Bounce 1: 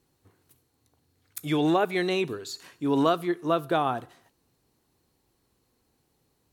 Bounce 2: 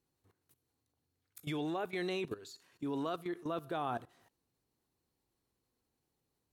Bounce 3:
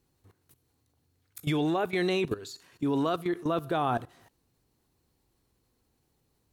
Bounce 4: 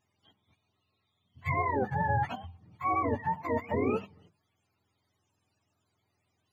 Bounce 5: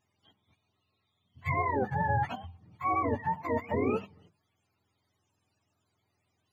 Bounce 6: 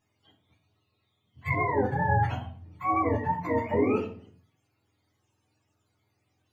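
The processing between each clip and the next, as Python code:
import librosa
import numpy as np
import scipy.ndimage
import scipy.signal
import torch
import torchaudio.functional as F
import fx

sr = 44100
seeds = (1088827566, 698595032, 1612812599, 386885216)

y1 = fx.level_steps(x, sr, step_db=16)
y1 = y1 * 10.0 ** (-4.0 / 20.0)
y2 = fx.low_shelf(y1, sr, hz=120.0, db=7.5)
y2 = y2 * 10.0 ** (8.5 / 20.0)
y3 = fx.octave_mirror(y2, sr, pivot_hz=560.0)
y3 = fx.hum_notches(y3, sr, base_hz=50, count=4)
y4 = y3
y5 = fx.room_shoebox(y4, sr, seeds[0], volume_m3=38.0, walls='mixed', distance_m=0.52)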